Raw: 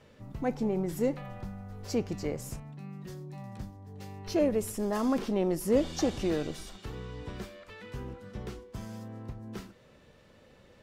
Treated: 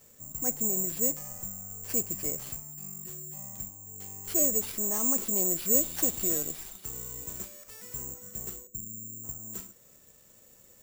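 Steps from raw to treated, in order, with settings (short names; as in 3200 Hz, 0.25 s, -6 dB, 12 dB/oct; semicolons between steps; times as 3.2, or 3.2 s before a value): 8.67–9.24 inverse Chebyshev low-pass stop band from 810 Hz, stop band 40 dB; careless resampling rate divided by 6×, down none, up zero stuff; gain -7 dB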